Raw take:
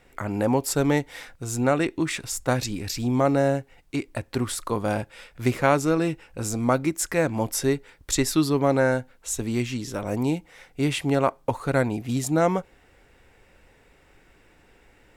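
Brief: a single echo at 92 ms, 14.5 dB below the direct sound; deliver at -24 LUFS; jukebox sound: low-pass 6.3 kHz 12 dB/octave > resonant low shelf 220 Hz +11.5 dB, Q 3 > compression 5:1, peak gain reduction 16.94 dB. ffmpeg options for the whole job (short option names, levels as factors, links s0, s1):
-af "lowpass=6300,lowshelf=f=220:t=q:w=3:g=11.5,aecho=1:1:92:0.188,acompressor=threshold=0.0562:ratio=5,volume=1.68"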